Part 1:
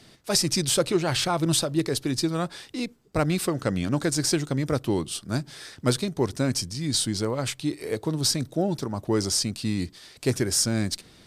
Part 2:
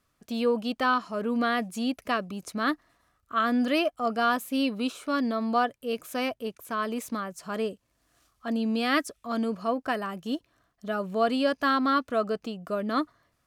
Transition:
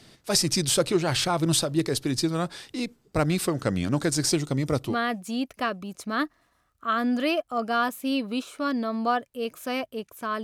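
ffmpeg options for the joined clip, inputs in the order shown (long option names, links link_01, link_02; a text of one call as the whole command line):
ffmpeg -i cue0.wav -i cue1.wav -filter_complex "[0:a]asettb=1/sr,asplit=3[link_01][link_02][link_03];[link_01]atrim=end=4.294[link_04];[link_02]atrim=start=4.29:end=4.96,asetpts=PTS-STARTPTS,afade=type=in:duration=0.004:curve=qsin,afade=type=out:start_time=0.666:duration=0.004:curve=qsin,bandreject=frequency=1600:width=5.4[link_05];[link_03]atrim=start=4.956[link_06];[link_04][link_05]acrossfade=duration=0.004:curve1=hsin:curve2=qsin[link_07];[link_07][link_06]acrossfade=duration=0.004:curve1=qsin:curve2=hsin,apad=whole_dur=10.43,atrim=end=10.43,atrim=end=4.96,asetpts=PTS-STARTPTS[link_08];[1:a]atrim=start=1.34:end=6.91,asetpts=PTS-STARTPTS[link_09];[link_08][link_09]acrossfade=duration=0.1:curve1=tri:curve2=tri" out.wav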